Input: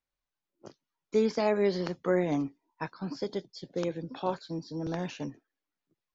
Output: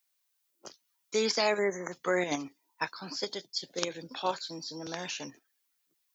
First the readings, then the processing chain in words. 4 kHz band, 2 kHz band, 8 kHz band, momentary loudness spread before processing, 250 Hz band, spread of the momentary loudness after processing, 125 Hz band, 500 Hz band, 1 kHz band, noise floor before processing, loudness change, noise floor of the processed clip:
+10.0 dB, +6.0 dB, can't be measured, 12 LU, −6.5 dB, 19 LU, −10.0 dB, −2.5 dB, +1.5 dB, below −85 dBFS, −1.0 dB, −78 dBFS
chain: time-frequency box erased 0:01.58–0:01.92, 2,200–5,900 Hz
spectral tilt +4.5 dB per octave
in parallel at +1.5 dB: output level in coarse steps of 17 dB
on the sum: high-pass filter 46 Hz
level −2 dB

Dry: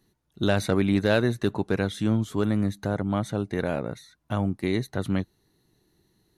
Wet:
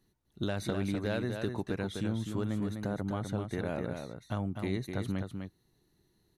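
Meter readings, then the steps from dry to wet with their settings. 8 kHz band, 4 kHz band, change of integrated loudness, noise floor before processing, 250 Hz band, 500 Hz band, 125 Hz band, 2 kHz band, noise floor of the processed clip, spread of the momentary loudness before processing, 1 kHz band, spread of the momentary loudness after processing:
−7.5 dB, −8.5 dB, −8.5 dB, −72 dBFS, −8.5 dB, −9.5 dB, −7.5 dB, −10.0 dB, −73 dBFS, 7 LU, −8.5 dB, 6 LU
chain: low-shelf EQ 68 Hz +5.5 dB
downward compressor, threshold −23 dBFS, peak gain reduction 7 dB
single-tap delay 252 ms −6 dB
level −6 dB

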